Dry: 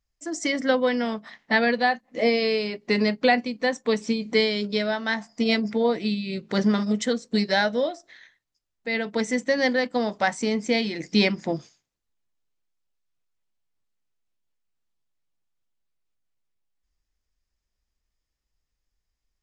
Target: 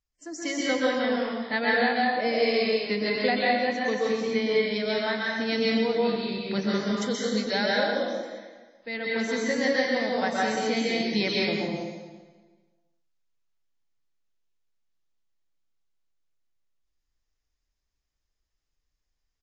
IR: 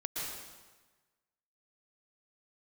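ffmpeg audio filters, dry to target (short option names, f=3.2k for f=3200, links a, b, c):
-filter_complex "[0:a]highshelf=f=4.4k:g=2.5,asettb=1/sr,asplit=3[a][b][c];[a]atrim=end=3.644[d];[b]atrim=start=3.64:end=4.63,asetpts=PTS-STARTPTS,afade=t=in:d=0.004:c=qsin,afade=t=out:st=0.986:d=0.004:c=qsin,acrossover=split=3100[e][f];[f]acompressor=threshold=-38dB:ratio=4:attack=1:release=60[g];[e][g]amix=inputs=2:normalize=0[h];[c]atrim=start=4.626[i];[d][h]acrossfade=d=0.004:c1=hsin:c2=qsin[j];[j][i]acrossfade=d=0.004:c1=qsin:c2=hsin[k];[1:a]atrim=start_sample=2205,asetrate=41013,aresample=44100[l];[k][l]afir=irnorm=-1:irlink=0,aresample=16000,aresample=44100,volume=-5dB" -ar 44100 -c:a wmav2 -b:a 32k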